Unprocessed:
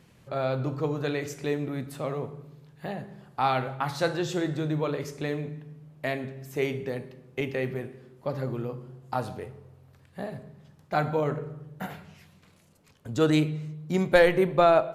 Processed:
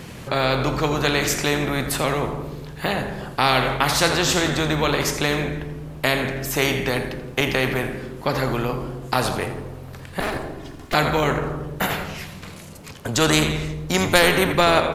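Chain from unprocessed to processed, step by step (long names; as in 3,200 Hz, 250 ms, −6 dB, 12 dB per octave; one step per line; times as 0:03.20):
0:10.20–0:10.94: lower of the sound and its delayed copy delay 2.8 ms
echo with shifted repeats 84 ms, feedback 41%, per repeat −88 Hz, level −14 dB
every bin compressed towards the loudest bin 2 to 1
level +6 dB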